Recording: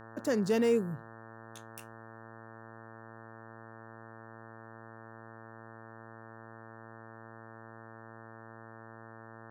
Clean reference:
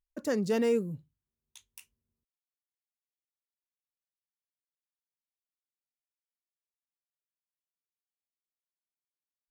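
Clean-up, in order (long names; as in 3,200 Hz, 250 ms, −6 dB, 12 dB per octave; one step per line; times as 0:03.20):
hum removal 112.8 Hz, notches 16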